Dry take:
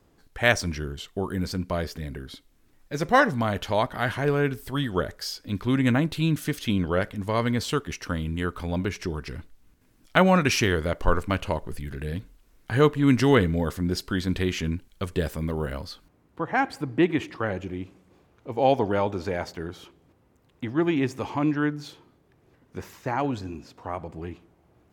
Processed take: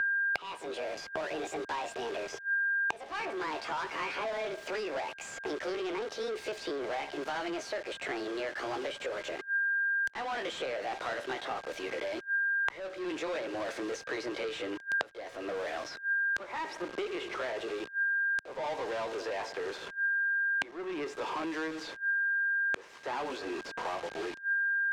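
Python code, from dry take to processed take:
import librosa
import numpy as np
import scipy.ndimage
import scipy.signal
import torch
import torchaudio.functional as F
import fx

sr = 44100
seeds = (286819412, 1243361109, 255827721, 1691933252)

y = fx.pitch_glide(x, sr, semitones=8.5, runs='ending unshifted')
y = scipy.signal.sosfilt(scipy.signal.cheby2(4, 40, 190.0, 'highpass', fs=sr, output='sos'), y)
y = fx.quant_dither(y, sr, seeds[0], bits=8, dither='none')
y = fx.power_curve(y, sr, exponent=0.35)
y = y + 10.0 ** (-30.0 / 20.0) * np.sin(2.0 * np.pi * 1600.0 * np.arange(len(y)) / sr)
y = fx.gate_flip(y, sr, shuts_db=-16.0, range_db=-33)
y = fx.air_absorb(y, sr, metres=100.0)
y = fx.band_squash(y, sr, depth_pct=100)
y = F.gain(torch.from_numpy(y), 5.5).numpy()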